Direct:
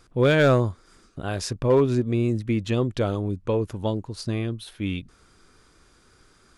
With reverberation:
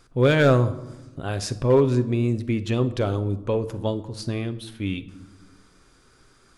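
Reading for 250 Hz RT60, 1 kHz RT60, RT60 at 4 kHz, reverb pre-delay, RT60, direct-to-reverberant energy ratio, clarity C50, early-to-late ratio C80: 1.7 s, 0.95 s, 0.65 s, 7 ms, 1.1 s, 10.5 dB, 15.0 dB, 18.0 dB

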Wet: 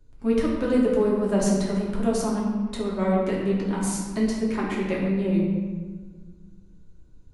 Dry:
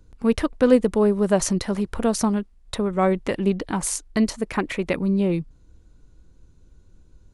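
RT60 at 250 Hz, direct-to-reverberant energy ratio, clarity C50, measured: 2.3 s, -5.0 dB, 1.0 dB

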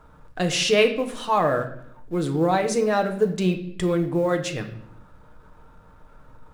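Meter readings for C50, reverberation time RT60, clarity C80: 10.5 dB, 0.70 s, 14.5 dB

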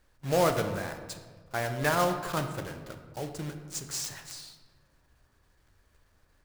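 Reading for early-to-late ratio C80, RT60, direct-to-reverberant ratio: 10.0 dB, 1.5 s, 6.0 dB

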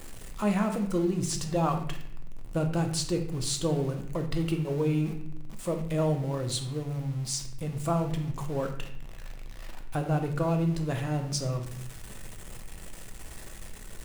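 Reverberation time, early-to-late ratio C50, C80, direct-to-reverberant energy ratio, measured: 0.70 s, 8.0 dB, 10.5 dB, 3.5 dB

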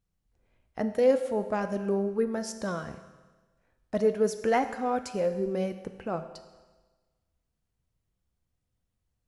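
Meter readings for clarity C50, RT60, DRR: 11.0 dB, 1.3 s, 8.5 dB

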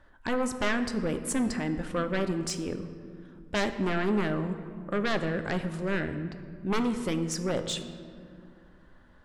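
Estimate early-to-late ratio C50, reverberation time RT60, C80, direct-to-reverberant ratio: 10.0 dB, 2.3 s, 11.5 dB, 8.0 dB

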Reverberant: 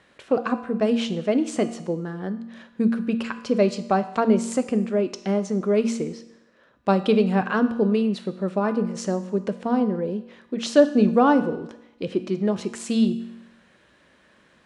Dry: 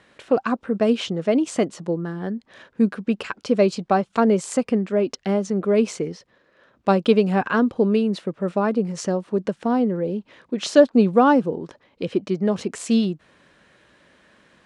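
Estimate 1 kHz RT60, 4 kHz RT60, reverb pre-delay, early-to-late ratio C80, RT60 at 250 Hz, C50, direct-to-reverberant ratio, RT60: 0.85 s, 0.85 s, 4 ms, 15.0 dB, 0.85 s, 13.0 dB, 10.0 dB, 0.85 s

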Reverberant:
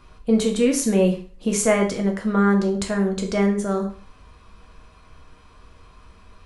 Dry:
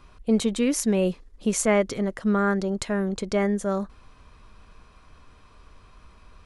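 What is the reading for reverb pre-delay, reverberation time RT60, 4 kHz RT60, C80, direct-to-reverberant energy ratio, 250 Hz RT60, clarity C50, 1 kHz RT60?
4 ms, 0.40 s, 0.40 s, 14.0 dB, 2.0 dB, 0.35 s, 9.5 dB, 0.45 s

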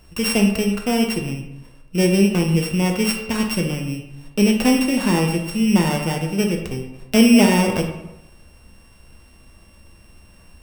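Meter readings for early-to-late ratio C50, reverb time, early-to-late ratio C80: 6.0 dB, 0.90 s, 8.5 dB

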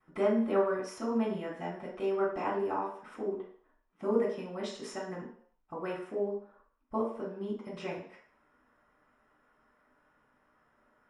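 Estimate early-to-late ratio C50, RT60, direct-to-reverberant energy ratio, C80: 4.0 dB, 0.60 s, -15.5 dB, 8.5 dB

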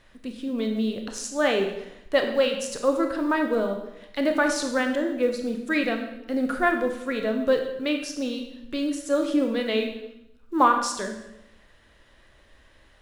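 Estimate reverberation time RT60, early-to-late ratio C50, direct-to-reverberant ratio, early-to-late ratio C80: 0.85 s, 6.5 dB, 4.0 dB, 9.0 dB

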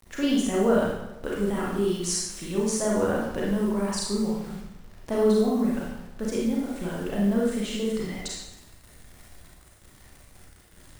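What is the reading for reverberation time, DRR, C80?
0.95 s, -4.5 dB, 3.5 dB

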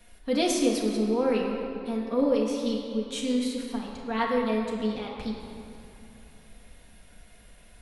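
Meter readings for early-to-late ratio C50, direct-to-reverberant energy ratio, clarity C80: 2.0 dB, -3.0 dB, 3.0 dB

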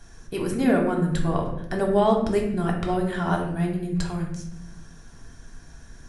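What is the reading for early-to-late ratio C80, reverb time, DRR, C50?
8.5 dB, 0.80 s, -1.0 dB, 5.5 dB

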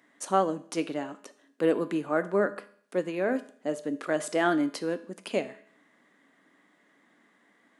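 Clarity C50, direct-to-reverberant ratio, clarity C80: 16.0 dB, 11.0 dB, 19.0 dB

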